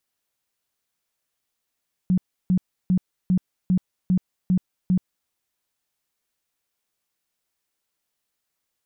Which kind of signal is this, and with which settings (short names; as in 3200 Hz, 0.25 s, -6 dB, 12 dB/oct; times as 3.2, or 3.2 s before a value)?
tone bursts 183 Hz, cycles 14, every 0.40 s, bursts 8, -15.5 dBFS